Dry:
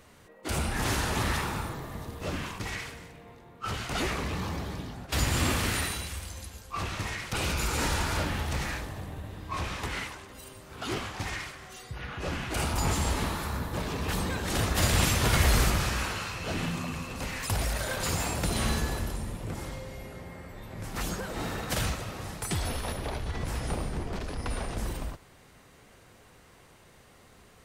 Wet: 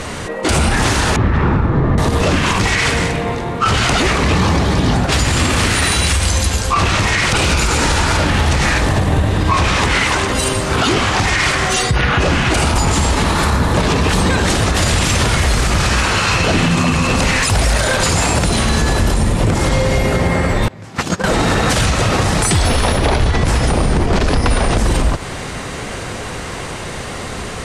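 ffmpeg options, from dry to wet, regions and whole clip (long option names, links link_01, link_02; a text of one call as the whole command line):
ffmpeg -i in.wav -filter_complex "[0:a]asettb=1/sr,asplit=3[link_01][link_02][link_03];[link_01]atrim=end=1.164[link_04];[link_02]atrim=start=1.16:end=1.98,asetpts=PTS-STARTPTS,afade=type=in:duration=0.004:curve=qsin,afade=type=out:start_time=0.816:duration=0.004:curve=qsin,lowpass=1200,equalizer=frequency=790:width=0.92:gain=-8[link_05];[link_03]atrim=start=1.976[link_06];[link_04][link_05]acrossfade=duration=0.004:curve1=hsin:curve2=qsin[link_07];[link_07][link_06]acrossfade=duration=0.004:curve1=qsin:curve2=hsin,asettb=1/sr,asplit=3[link_08][link_09][link_10];[link_08]atrim=end=20.684[link_11];[link_09]atrim=start=20.68:end=21.24,asetpts=PTS-STARTPTS,afade=type=in:duration=0.004:curve=qsin,afade=type=out:start_time=0.556:duration=0.004:curve=qsin,highpass=frequency=83:width=0.5412,highpass=frequency=83:width=1.3066,equalizer=frequency=10000:width=1.2:gain=-6,agate=range=-25dB:threshold=-33dB:ratio=16:release=100:detection=peak[link_12];[link_10]atrim=start=21.236[link_13];[link_11][link_12]acrossfade=duration=0.004:curve1=hsin:curve2=qsin[link_14];[link_14][link_13]acrossfade=duration=0.004:curve1=qsin:curve2=hsin,lowpass=frequency=9800:width=0.5412,lowpass=frequency=9800:width=1.3066,acompressor=threshold=-39dB:ratio=6,alimiter=level_in=35dB:limit=-1dB:release=50:level=0:latency=1,volume=-4.5dB" out.wav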